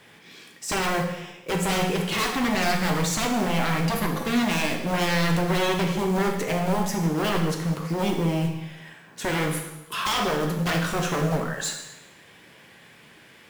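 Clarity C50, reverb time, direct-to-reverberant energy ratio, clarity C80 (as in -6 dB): 5.5 dB, 1.0 s, 1.5 dB, 8.0 dB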